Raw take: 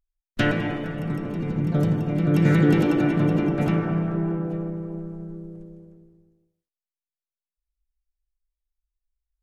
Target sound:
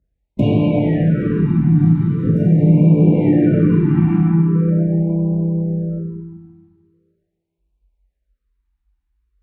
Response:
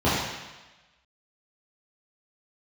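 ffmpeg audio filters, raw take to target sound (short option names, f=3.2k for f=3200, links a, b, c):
-filter_complex "[0:a]highpass=f=100:p=1,highshelf=f=2.4k:g=-8.5,asettb=1/sr,asplit=3[a][b][c];[a]atrim=end=1.944[d];[b]atrim=start=1.94:end=4.03,asetpts=PTS-STARTPTS,afade=t=in:d=0.004:c=qsin,afade=t=out:st=2.086:d=0.004:c=qsin,acrossover=split=4000[e][f];[e]adelay=290[g];[g][f]amix=inputs=2:normalize=0,atrim=end_sample=92169[h];[c]atrim=start=4.026[i];[d][h]acrossfade=d=0.004:c1=hsin:c2=qsin[j];[j][i]acrossfade=d=0.004:c1=qsin:c2=hsin[k];[1:a]atrim=start_sample=2205,asetrate=27342,aresample=44100[l];[k][l]afir=irnorm=-1:irlink=0,acompressor=threshold=-13dB:ratio=2.5,afftfilt=real='re*(1-between(b*sr/1024,500*pow(1600/500,0.5+0.5*sin(2*PI*0.42*pts/sr))/1.41,500*pow(1600/500,0.5+0.5*sin(2*PI*0.42*pts/sr))*1.41))':imag='im*(1-between(b*sr/1024,500*pow(1600/500,0.5+0.5*sin(2*PI*0.42*pts/sr))/1.41,500*pow(1600/500,0.5+0.5*sin(2*PI*0.42*pts/sr))*1.41))':win_size=1024:overlap=0.75,volume=-4.5dB"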